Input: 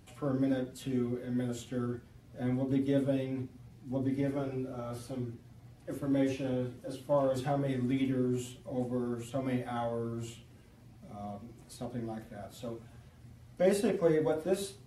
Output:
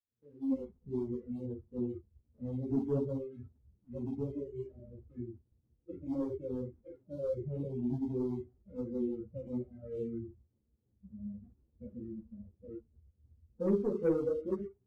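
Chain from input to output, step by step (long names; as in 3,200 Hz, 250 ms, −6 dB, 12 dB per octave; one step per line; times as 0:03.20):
fade in at the beginning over 0.61 s
Butterworth low-pass 510 Hz 72 dB per octave
leveller curve on the samples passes 1
noise reduction from a noise print of the clip's start 20 dB
string-ensemble chorus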